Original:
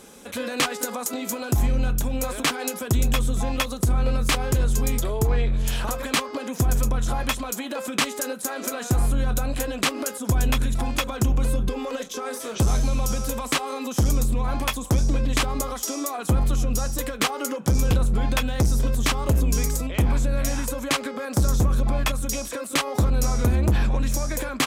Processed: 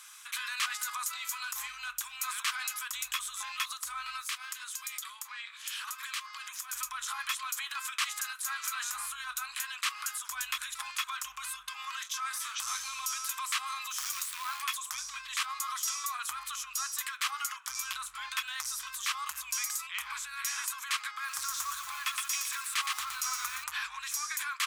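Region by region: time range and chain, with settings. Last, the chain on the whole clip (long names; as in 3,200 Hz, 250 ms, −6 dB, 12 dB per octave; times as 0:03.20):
0:04.21–0:06.73: high-pass filter 1,300 Hz 6 dB per octave + downward compressor 2.5 to 1, threshold −35 dBFS
0:13.90–0:14.62: low-shelf EQ 330 Hz −2 dB + floating-point word with a short mantissa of 2 bits
0:21.11–0:23.64: parametric band 170 Hz +8.5 dB 0.97 octaves + feedback echo at a low word length 117 ms, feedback 55%, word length 6 bits, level −8 dB
whole clip: elliptic high-pass filter 1,100 Hz, stop band 50 dB; brickwall limiter −20.5 dBFS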